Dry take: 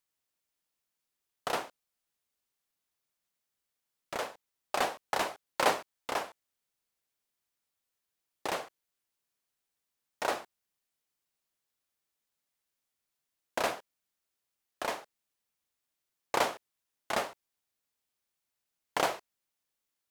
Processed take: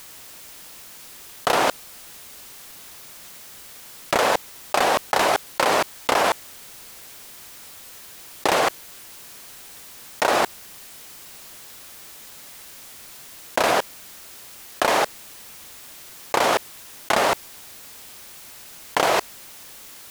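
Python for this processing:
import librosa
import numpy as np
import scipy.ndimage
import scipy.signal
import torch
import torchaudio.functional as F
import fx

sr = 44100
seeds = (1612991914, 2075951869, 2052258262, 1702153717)

y = fx.env_flatten(x, sr, amount_pct=100)
y = y * 10.0 ** (3.0 / 20.0)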